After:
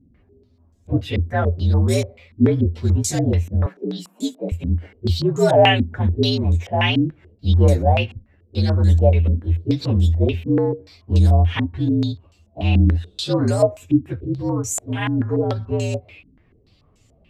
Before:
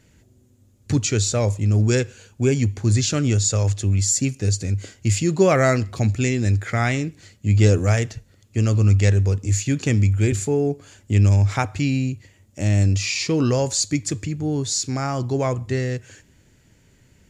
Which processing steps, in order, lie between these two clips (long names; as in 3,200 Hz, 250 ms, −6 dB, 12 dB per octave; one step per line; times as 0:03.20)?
partials spread apart or drawn together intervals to 118%
0:03.66–0:04.52: Butterworth high-pass 170 Hz 96 dB per octave
low-pass on a step sequencer 6.9 Hz 260–7,100 Hz
level +1.5 dB